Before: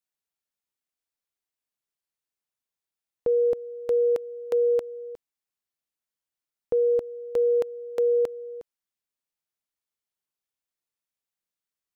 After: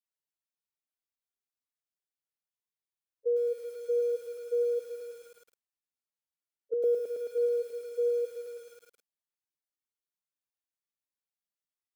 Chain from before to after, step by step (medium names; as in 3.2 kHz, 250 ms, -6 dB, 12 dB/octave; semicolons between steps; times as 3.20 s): harmonic-percussive separation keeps harmonic; 5.03–6.84 s: low-pass that closes with the level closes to 470 Hz, closed at -24 dBFS; bit-crushed delay 108 ms, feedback 80%, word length 8-bit, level -7.5 dB; trim -5 dB